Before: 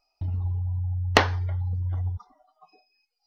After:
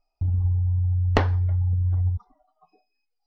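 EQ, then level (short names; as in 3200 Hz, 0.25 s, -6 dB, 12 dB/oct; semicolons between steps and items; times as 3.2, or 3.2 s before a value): tilt -3 dB/oct; -5.0 dB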